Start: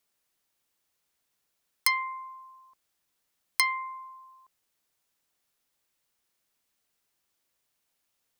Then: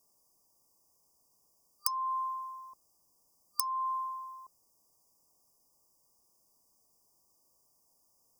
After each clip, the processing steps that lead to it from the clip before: FFT band-reject 1.2–4.7 kHz; compression 12:1, threshold -36 dBFS, peak gain reduction 15 dB; trim +8 dB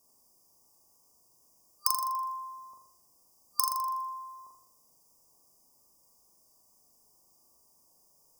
feedback comb 82 Hz, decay 0.51 s, harmonics odd, mix 30%; on a send: flutter echo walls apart 7 m, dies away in 0.67 s; on the sum: trim +6 dB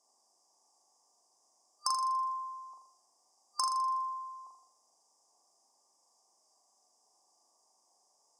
cabinet simulation 480–7800 Hz, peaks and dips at 510 Hz -4 dB, 770 Hz +7 dB, 2.6 kHz -8 dB

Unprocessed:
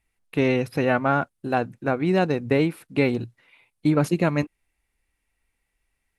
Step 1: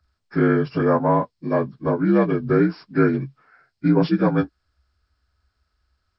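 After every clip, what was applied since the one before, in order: frequency axis rescaled in octaves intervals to 80%; peaking EQ 71 Hz +12.5 dB 0.9 oct; trim +3.5 dB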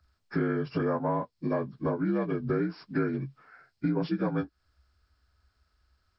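compression 4:1, threshold -27 dBFS, peak gain reduction 12.5 dB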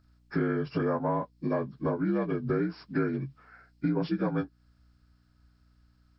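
hum 60 Hz, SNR 32 dB

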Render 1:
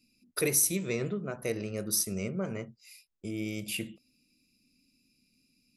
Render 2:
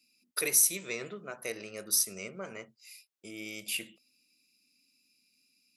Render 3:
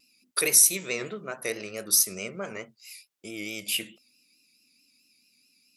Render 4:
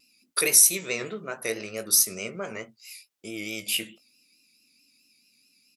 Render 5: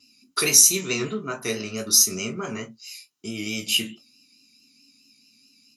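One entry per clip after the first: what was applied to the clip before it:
high-pass 1.1 kHz 6 dB/octave; trim +2 dB
vibrato 4.6 Hz 67 cents; trim +6 dB
doubling 18 ms -11 dB; trim +1 dB
reverberation, pre-delay 3 ms, DRR 4 dB; trim -3 dB

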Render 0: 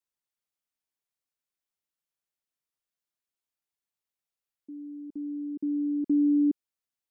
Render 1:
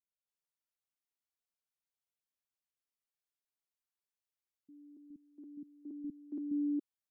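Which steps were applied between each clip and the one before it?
bands offset in time lows, highs 280 ms, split 250 Hz; trim -7 dB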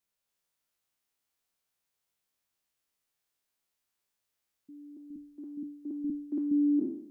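spectral sustain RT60 0.70 s; trim +8 dB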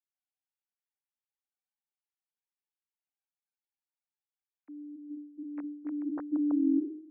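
formants replaced by sine waves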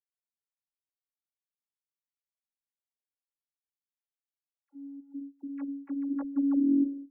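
robot voice 280 Hz; gate -45 dBFS, range -16 dB; phase dispersion lows, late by 51 ms, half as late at 650 Hz; trim +2.5 dB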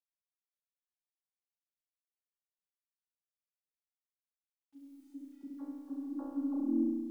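low-pass 1.1 kHz 24 dB/octave; bit crusher 12-bit; flutter echo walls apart 5.8 m, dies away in 1.4 s; trim -5.5 dB

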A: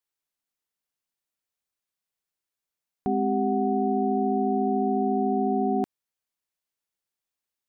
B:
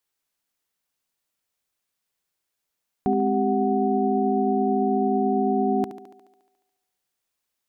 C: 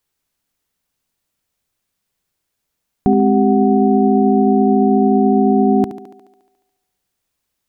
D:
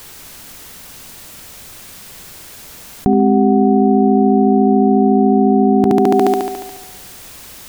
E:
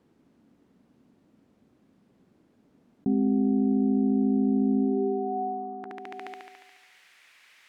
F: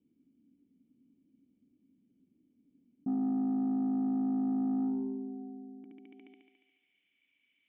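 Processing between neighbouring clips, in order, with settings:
in parallel at +1 dB: peak limiter -24 dBFS, peak gain reduction 8.5 dB; on the sum: thinning echo 71 ms, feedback 69%, high-pass 170 Hz, level -11 dB
bass shelf 250 Hz +10.5 dB; trim +5 dB
level flattener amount 100%; trim -1 dB
band-pass sweep 250 Hz -> 2.1 kHz, 4.78–6.03 s; trim -9 dB
cascade formant filter i; saturation -24.5 dBFS, distortion -16 dB; trim -2 dB

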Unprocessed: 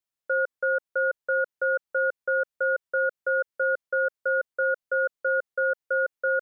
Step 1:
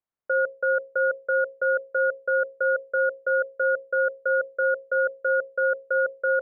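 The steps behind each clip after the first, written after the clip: low-pass 1.5 kHz; hum notches 60/120/180/240/300/360/420/480/540 Hz; trim +3.5 dB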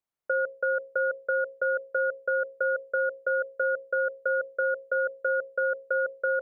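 compression 3:1, threshold -24 dBFS, peak gain reduction 4.5 dB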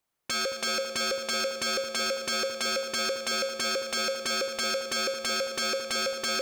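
wavefolder -33 dBFS; two-band feedback delay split 1.1 kHz, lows 222 ms, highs 115 ms, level -8.5 dB; trim +9 dB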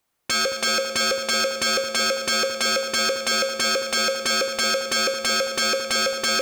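reverberation, pre-delay 3 ms, DRR 10.5 dB; trim +7 dB

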